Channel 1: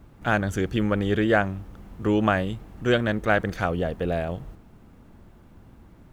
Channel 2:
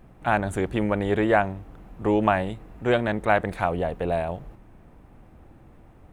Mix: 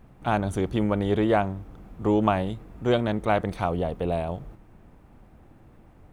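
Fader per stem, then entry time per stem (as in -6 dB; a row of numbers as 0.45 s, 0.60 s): -9.5 dB, -2.5 dB; 0.00 s, 0.00 s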